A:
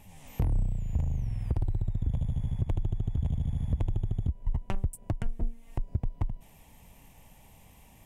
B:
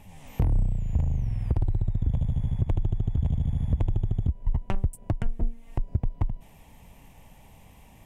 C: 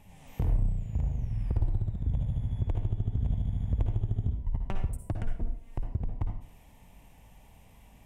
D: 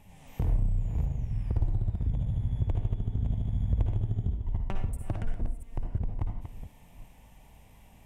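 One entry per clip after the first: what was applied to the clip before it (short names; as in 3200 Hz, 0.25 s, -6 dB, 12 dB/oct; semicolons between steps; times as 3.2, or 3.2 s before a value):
high shelf 4600 Hz -6.5 dB; gain +4 dB
reverb RT60 0.50 s, pre-delay 51 ms, DRR 3.5 dB; gain -6 dB
reverse delay 0.352 s, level -9 dB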